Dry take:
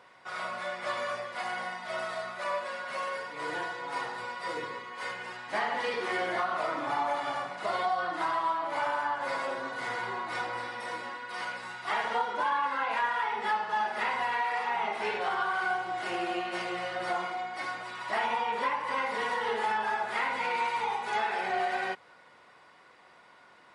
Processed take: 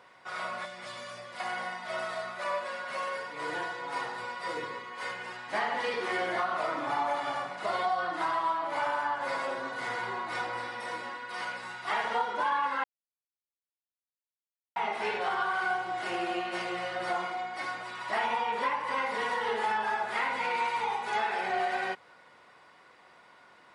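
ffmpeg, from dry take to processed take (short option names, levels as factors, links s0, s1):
-filter_complex "[0:a]asettb=1/sr,asplit=3[s0][s1][s2];[s0]atrim=end=0.654[s3];[s1]atrim=start=0.65:end=1.4,asetpts=PTS-STARTPTS,afade=t=in:d=0.004:c=qsin,afade=t=out:st=0.746:d=0.004:c=qsin,acrossover=split=240|3000[s4][s5][s6];[s5]acompressor=threshold=0.00708:ratio=4:attack=3.2:release=140:knee=2.83:detection=peak[s7];[s4][s7][s6]amix=inputs=3:normalize=0[s8];[s2]atrim=start=1.396[s9];[s3][s8]acrossfade=d=0.004:c1=hsin:c2=qsin[s10];[s10][s9]acrossfade=d=0.004:c1=qsin:c2=hsin,asplit=3[s11][s12][s13];[s11]atrim=end=12.84,asetpts=PTS-STARTPTS,afade=t=out:st=12.836:d=0.004:c=hsin[s14];[s12]atrim=start=12.84:end=14.76,asetpts=PTS-STARTPTS,volume=0[s15];[s13]atrim=start=14.76,asetpts=PTS-STARTPTS,afade=t=in:d=0.004:c=hsin[s16];[s14][s15][s16]concat=n=3:v=0:a=1"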